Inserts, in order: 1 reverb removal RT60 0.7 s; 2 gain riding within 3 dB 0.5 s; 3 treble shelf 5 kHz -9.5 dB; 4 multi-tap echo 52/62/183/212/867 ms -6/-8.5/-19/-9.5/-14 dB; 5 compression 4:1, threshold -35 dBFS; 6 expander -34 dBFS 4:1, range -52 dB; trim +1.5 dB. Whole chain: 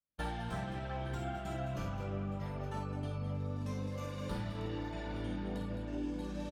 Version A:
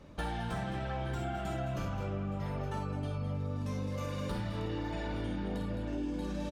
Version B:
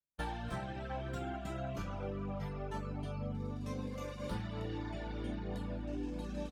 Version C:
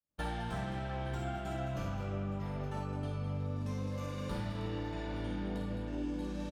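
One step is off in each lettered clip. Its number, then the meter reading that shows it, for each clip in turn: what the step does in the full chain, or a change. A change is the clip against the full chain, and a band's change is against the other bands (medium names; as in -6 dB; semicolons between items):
6, loudness change +3.0 LU; 4, loudness change -1.5 LU; 1, crest factor change -1.5 dB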